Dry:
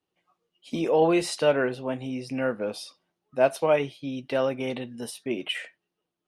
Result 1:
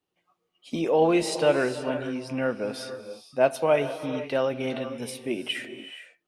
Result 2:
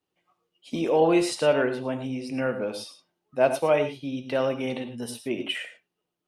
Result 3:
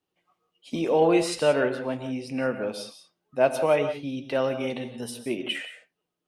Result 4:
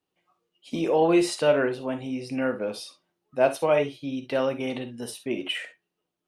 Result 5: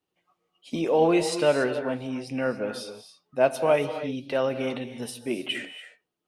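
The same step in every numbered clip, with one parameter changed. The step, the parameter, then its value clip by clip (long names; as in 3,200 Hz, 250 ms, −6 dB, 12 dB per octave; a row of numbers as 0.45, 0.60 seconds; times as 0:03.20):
reverb whose tail is shaped and stops, gate: 500, 130, 200, 80, 310 milliseconds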